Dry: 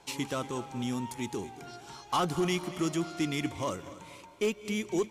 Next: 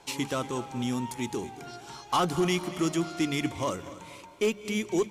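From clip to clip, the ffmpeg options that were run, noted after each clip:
ffmpeg -i in.wav -af "bandreject=frequency=50:width_type=h:width=6,bandreject=frequency=100:width_type=h:width=6,bandreject=frequency=150:width_type=h:width=6,bandreject=frequency=200:width_type=h:width=6,volume=3dB" out.wav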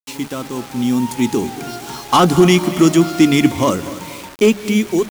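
ffmpeg -i in.wav -af "equalizer=frequency=240:width_type=o:width=0.94:gain=7,dynaudnorm=framelen=420:gausssize=5:maxgain=12dB,acrusher=bits=5:mix=0:aa=0.000001,volume=2dB" out.wav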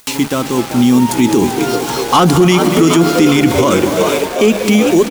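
ffmpeg -i in.wav -filter_complex "[0:a]asplit=2[link_01][link_02];[link_02]asplit=8[link_03][link_04][link_05][link_06][link_07][link_08][link_09][link_10];[link_03]adelay=387,afreqshift=72,volume=-11dB[link_11];[link_04]adelay=774,afreqshift=144,volume=-14.9dB[link_12];[link_05]adelay=1161,afreqshift=216,volume=-18.8dB[link_13];[link_06]adelay=1548,afreqshift=288,volume=-22.6dB[link_14];[link_07]adelay=1935,afreqshift=360,volume=-26.5dB[link_15];[link_08]adelay=2322,afreqshift=432,volume=-30.4dB[link_16];[link_09]adelay=2709,afreqshift=504,volume=-34.3dB[link_17];[link_10]adelay=3096,afreqshift=576,volume=-38.1dB[link_18];[link_11][link_12][link_13][link_14][link_15][link_16][link_17][link_18]amix=inputs=8:normalize=0[link_19];[link_01][link_19]amix=inputs=2:normalize=0,acompressor=mode=upward:threshold=-25dB:ratio=2.5,alimiter=level_in=10dB:limit=-1dB:release=50:level=0:latency=1,volume=-1dB" out.wav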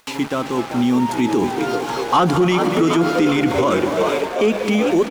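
ffmpeg -i in.wav -filter_complex "[0:a]asplit=2[link_01][link_02];[link_02]highpass=frequency=720:poles=1,volume=6dB,asoftclip=type=tanh:threshold=-1.5dB[link_03];[link_01][link_03]amix=inputs=2:normalize=0,lowpass=frequency=1600:poles=1,volume=-6dB,volume=-3.5dB" out.wav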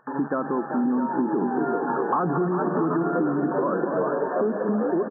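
ffmpeg -i in.wav -af "afftfilt=real='re*between(b*sr/4096,130,1800)':imag='im*between(b*sr/4096,130,1800)':win_size=4096:overlap=0.75,acompressor=threshold=-21dB:ratio=6,aecho=1:1:663:0.282" out.wav

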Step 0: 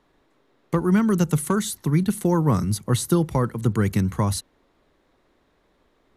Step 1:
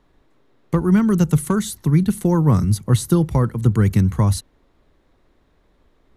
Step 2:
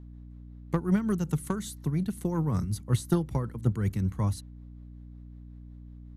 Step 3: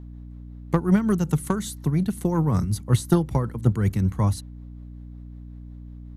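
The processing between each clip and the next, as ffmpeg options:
ffmpeg -i in.wav -af "lowshelf=frequency=140:gain=11.5" out.wav
ffmpeg -i in.wav -af "tremolo=f=5.4:d=0.45,aeval=exprs='0.562*(cos(1*acos(clip(val(0)/0.562,-1,1)))-cos(1*PI/2))+0.0631*(cos(3*acos(clip(val(0)/0.562,-1,1)))-cos(3*PI/2))':channel_layout=same,aeval=exprs='val(0)+0.0141*(sin(2*PI*60*n/s)+sin(2*PI*2*60*n/s)/2+sin(2*PI*3*60*n/s)/3+sin(2*PI*4*60*n/s)/4+sin(2*PI*5*60*n/s)/5)':channel_layout=same,volume=-7dB" out.wav
ffmpeg -i in.wav -af "equalizer=frequency=760:width=1.5:gain=2.5,volume=6dB" out.wav

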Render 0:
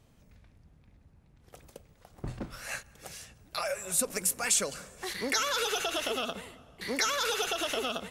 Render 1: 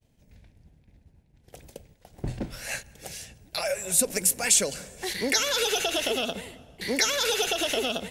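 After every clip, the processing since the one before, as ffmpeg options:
ffmpeg -i in.wav -af "equalizer=frequency=1200:width_type=o:width=0.51:gain=-12.5,agate=range=-33dB:threshold=-54dB:ratio=3:detection=peak,volume=6dB" out.wav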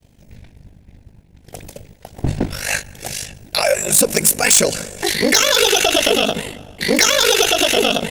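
ffmpeg -i in.wav -filter_complex "[0:a]aeval=exprs='val(0)*sin(2*PI*25*n/s)':channel_layout=same,asplit=2[link_01][link_02];[link_02]aeval=exprs='0.376*sin(PI/2*3.55*val(0)/0.376)':channel_layout=same,volume=-4dB[link_03];[link_01][link_03]amix=inputs=2:normalize=0,volume=3dB" out.wav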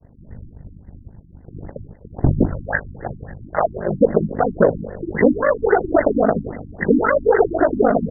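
ffmpeg -i in.wav -af "afftfilt=real='re*lt(b*sr/1024,330*pow(2100/330,0.5+0.5*sin(2*PI*3.7*pts/sr)))':imag='im*lt(b*sr/1024,330*pow(2100/330,0.5+0.5*sin(2*PI*3.7*pts/sr)))':win_size=1024:overlap=0.75,volume=4dB" out.wav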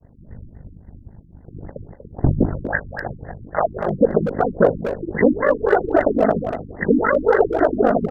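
ffmpeg -i in.wav -filter_complex "[0:a]asplit=2[link_01][link_02];[link_02]adelay=240,highpass=300,lowpass=3400,asoftclip=type=hard:threshold=-9.5dB,volume=-7dB[link_03];[link_01][link_03]amix=inputs=2:normalize=0,volume=-1dB" out.wav

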